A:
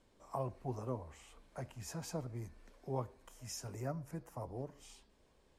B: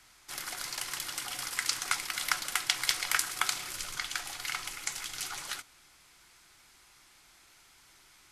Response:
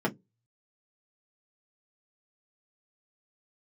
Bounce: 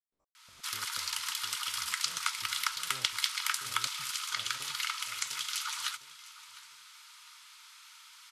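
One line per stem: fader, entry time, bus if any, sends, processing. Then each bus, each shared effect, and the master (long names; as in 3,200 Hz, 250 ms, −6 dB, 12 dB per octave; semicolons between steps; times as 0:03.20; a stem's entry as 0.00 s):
−18.0 dB, 0.00 s, no send, echo send −6 dB, spectrum averaged block by block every 100 ms; gate pattern ".x..x.x.xx....xx" 124 BPM −60 dB
+2.5 dB, 0.35 s, no send, echo send −18.5 dB, downward compressor 2 to 1, threshold −40 dBFS, peak gain reduction 10.5 dB; Chebyshev high-pass with heavy ripple 890 Hz, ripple 6 dB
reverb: not used
echo: repeating echo 705 ms, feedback 32%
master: automatic gain control gain up to 6.5 dB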